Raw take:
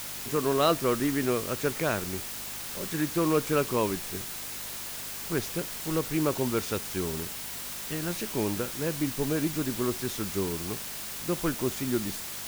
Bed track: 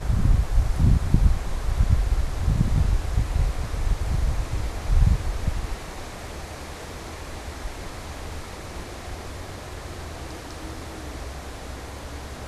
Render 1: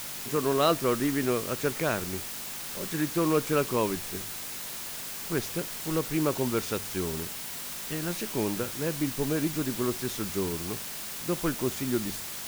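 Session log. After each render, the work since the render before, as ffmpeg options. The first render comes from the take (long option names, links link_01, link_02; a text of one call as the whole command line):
ffmpeg -i in.wav -af "bandreject=frequency=50:width_type=h:width=4,bandreject=frequency=100:width_type=h:width=4" out.wav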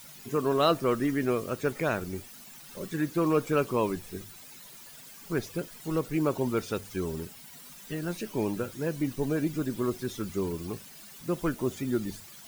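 ffmpeg -i in.wav -af "afftdn=noise_reduction=14:noise_floor=-38" out.wav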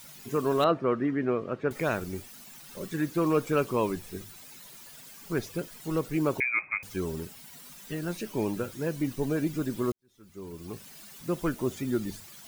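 ffmpeg -i in.wav -filter_complex "[0:a]asettb=1/sr,asplit=3[link_01][link_02][link_03];[link_01]atrim=end=0.644[link_04];[link_02]atrim=start=0.64:end=1.71,asetpts=PTS-STARTPTS,afade=type=in:duration=0.004:curve=qsin,afade=type=out:start_time=1.066:duration=0.004:curve=qsin,highpass=110,lowpass=2000[link_05];[link_03]atrim=start=1.706[link_06];[link_04][link_05]acrossfade=duration=0.004:curve1=hsin:curve2=qsin[link_07];[link_07][link_06]acrossfade=duration=0.004:curve1=qsin:curve2=hsin,asettb=1/sr,asplit=3[link_08][link_09][link_10];[link_08]atrim=end=6.404[link_11];[link_09]atrim=start=6.4:end=6.83,asetpts=PTS-STARTPTS,afade=type=in:duration=0.004:curve=qsin,afade=type=out:start_time=0.426:duration=0.004:curve=qsin,lowpass=frequency=2200:width_type=q:width=0.5098,lowpass=frequency=2200:width_type=q:width=0.6013,lowpass=frequency=2200:width_type=q:width=0.9,lowpass=frequency=2200:width_type=q:width=2.563,afreqshift=-2600[link_12];[link_10]atrim=start=6.826[link_13];[link_11][link_12]acrossfade=duration=0.004:curve1=hsin:curve2=qsin[link_14];[link_14][link_13]acrossfade=duration=0.004:curve1=qsin:curve2=hsin,asplit=2[link_15][link_16];[link_15]atrim=end=9.92,asetpts=PTS-STARTPTS,afade=type=out:start_time=9.916:duration=0.004:curve=hsin[link_17];[link_16]atrim=start=9.92,asetpts=PTS-STARTPTS,afade=type=in:duration=0.97:curve=qua[link_18];[link_17][link_18]concat=n=2:v=0:a=1" out.wav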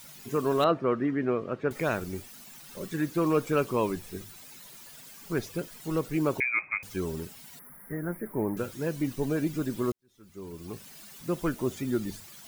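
ffmpeg -i in.wav -filter_complex "[0:a]asettb=1/sr,asplit=3[link_01][link_02][link_03];[link_01]atrim=end=7.594[link_04];[link_02]atrim=start=7.59:end=8.57,asetpts=PTS-STARTPTS,afade=type=in:duration=0.004:curve=qsin,afade=type=out:start_time=0.976:duration=0.004:curve=qsin,asuperstop=centerf=4800:order=20:qfactor=0.63[link_05];[link_03]atrim=start=8.566[link_06];[link_04][link_05]acrossfade=duration=0.004:curve1=hsin:curve2=qsin[link_07];[link_07][link_06]acrossfade=duration=0.004:curve1=qsin:curve2=hsin" out.wav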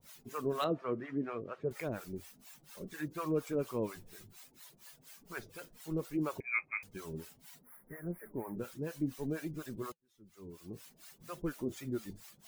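ffmpeg -i in.wav -filter_complex "[0:a]acrossover=split=600[link_01][link_02];[link_01]aeval=exprs='val(0)*(1-1/2+1/2*cos(2*PI*4.2*n/s))':channel_layout=same[link_03];[link_02]aeval=exprs='val(0)*(1-1/2-1/2*cos(2*PI*4.2*n/s))':channel_layout=same[link_04];[link_03][link_04]amix=inputs=2:normalize=0,flanger=delay=1.7:depth=5.1:regen=-74:speed=0.62:shape=sinusoidal" out.wav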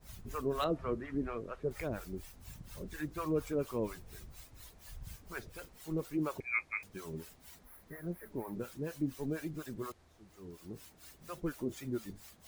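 ffmpeg -i in.wav -i bed.wav -filter_complex "[1:a]volume=-30dB[link_01];[0:a][link_01]amix=inputs=2:normalize=0" out.wav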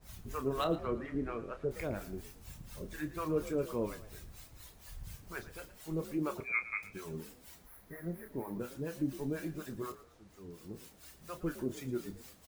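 ffmpeg -i in.wav -filter_complex "[0:a]asplit=2[link_01][link_02];[link_02]adelay=30,volume=-10dB[link_03];[link_01][link_03]amix=inputs=2:normalize=0,asplit=4[link_04][link_05][link_06][link_07];[link_05]adelay=113,afreqshift=48,volume=-15.5dB[link_08];[link_06]adelay=226,afreqshift=96,volume=-25.1dB[link_09];[link_07]adelay=339,afreqshift=144,volume=-34.8dB[link_10];[link_04][link_08][link_09][link_10]amix=inputs=4:normalize=0" out.wav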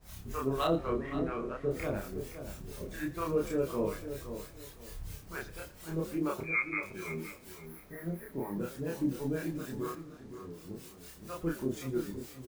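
ffmpeg -i in.wav -filter_complex "[0:a]asplit=2[link_01][link_02];[link_02]adelay=30,volume=-2.5dB[link_03];[link_01][link_03]amix=inputs=2:normalize=0,asplit=2[link_04][link_05];[link_05]adelay=518,lowpass=frequency=1800:poles=1,volume=-9.5dB,asplit=2[link_06][link_07];[link_07]adelay=518,lowpass=frequency=1800:poles=1,volume=0.27,asplit=2[link_08][link_09];[link_09]adelay=518,lowpass=frequency=1800:poles=1,volume=0.27[link_10];[link_04][link_06][link_08][link_10]amix=inputs=4:normalize=0" out.wav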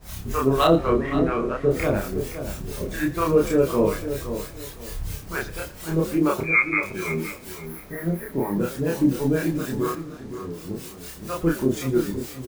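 ffmpeg -i in.wav -af "volume=12dB" out.wav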